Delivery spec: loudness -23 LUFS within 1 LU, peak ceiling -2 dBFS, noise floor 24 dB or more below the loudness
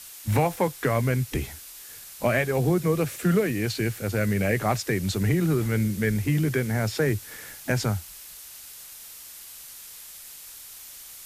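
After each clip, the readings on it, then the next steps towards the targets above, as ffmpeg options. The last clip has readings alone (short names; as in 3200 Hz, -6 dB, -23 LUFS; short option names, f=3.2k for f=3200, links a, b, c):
noise floor -44 dBFS; noise floor target -50 dBFS; loudness -25.5 LUFS; peak -10.5 dBFS; loudness target -23.0 LUFS
-> -af "afftdn=nr=6:nf=-44"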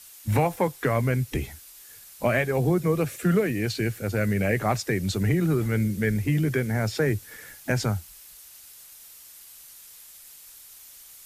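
noise floor -48 dBFS; noise floor target -50 dBFS
-> -af "afftdn=nr=6:nf=-48"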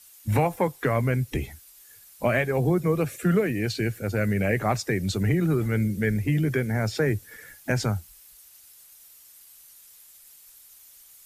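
noise floor -52 dBFS; loudness -25.5 LUFS; peak -10.5 dBFS; loudness target -23.0 LUFS
-> -af "volume=2.5dB"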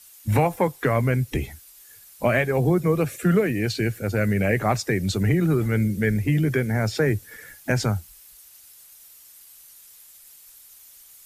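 loudness -23.0 LUFS; peak -8.0 dBFS; noise floor -49 dBFS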